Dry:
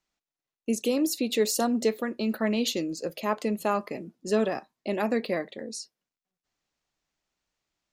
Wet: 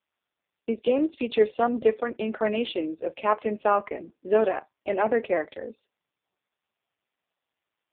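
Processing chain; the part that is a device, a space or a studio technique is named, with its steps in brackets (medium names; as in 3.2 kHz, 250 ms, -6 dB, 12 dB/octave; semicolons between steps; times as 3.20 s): telephone (band-pass 370–3400 Hz; trim +6 dB; AMR-NB 4.75 kbps 8 kHz)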